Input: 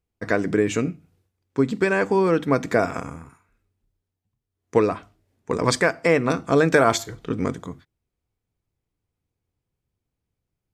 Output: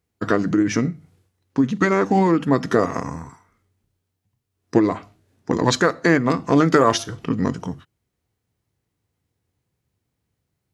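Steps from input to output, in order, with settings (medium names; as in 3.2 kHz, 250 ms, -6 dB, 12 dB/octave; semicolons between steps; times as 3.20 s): high-pass 80 Hz; in parallel at +2.5 dB: compression, threshold -29 dBFS, peak gain reduction 16 dB; on the sum: formant shift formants -3 st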